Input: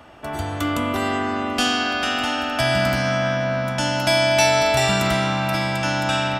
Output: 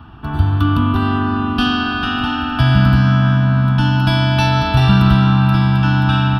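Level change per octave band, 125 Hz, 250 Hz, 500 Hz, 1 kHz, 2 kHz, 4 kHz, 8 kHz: +15.0 dB, +9.5 dB, -6.5 dB, +3.0 dB, +0.5 dB, 0.0 dB, under -10 dB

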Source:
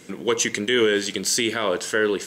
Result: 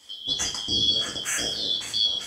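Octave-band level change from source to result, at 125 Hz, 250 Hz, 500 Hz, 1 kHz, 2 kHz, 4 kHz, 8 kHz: -4.5, -14.0, -20.0, -11.0, -11.0, +5.5, -4.0 dB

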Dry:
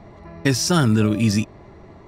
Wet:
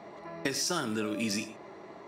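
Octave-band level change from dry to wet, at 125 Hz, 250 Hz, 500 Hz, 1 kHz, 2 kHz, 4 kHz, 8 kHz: -23.5, -14.5, -10.0, -9.5, -8.5, -8.5, -8.0 dB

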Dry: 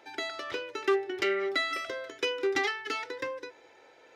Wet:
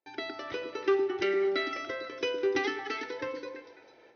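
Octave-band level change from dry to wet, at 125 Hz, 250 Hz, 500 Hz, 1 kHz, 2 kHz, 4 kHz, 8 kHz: n/a, +3.0 dB, +1.5 dB, -2.0 dB, -3.0 dB, -3.5 dB, -5.5 dB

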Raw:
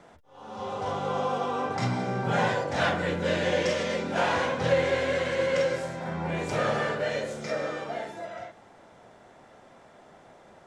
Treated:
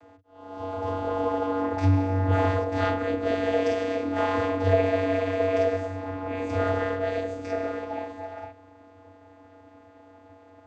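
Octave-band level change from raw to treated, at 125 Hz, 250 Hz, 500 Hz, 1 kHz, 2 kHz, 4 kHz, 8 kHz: +5.5 dB, +4.5 dB, +2.0 dB, 0.0 dB, -4.0 dB, -7.5 dB, n/a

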